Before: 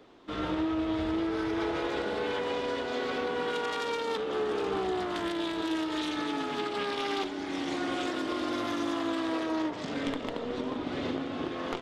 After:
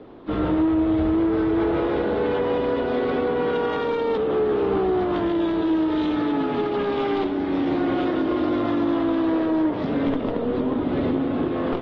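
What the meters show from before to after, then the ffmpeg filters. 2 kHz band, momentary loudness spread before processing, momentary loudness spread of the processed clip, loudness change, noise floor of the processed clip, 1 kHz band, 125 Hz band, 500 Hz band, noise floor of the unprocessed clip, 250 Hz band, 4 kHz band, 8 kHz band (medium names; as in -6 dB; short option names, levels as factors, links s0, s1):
+2.5 dB, 4 LU, 3 LU, +9.0 dB, -26 dBFS, +6.0 dB, +12.5 dB, +10.0 dB, -37 dBFS, +11.0 dB, -2.0 dB, under -15 dB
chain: -filter_complex "[0:a]lowpass=f=4300:w=0.5412,lowpass=f=4300:w=1.3066,tiltshelf=f=1100:g=8,asplit=2[s0][s1];[s1]alimiter=limit=0.0631:level=0:latency=1:release=129,volume=0.75[s2];[s0][s2]amix=inputs=2:normalize=0,asoftclip=type=tanh:threshold=0.158,volume=1.33" -ar 32000 -c:a aac -b:a 24k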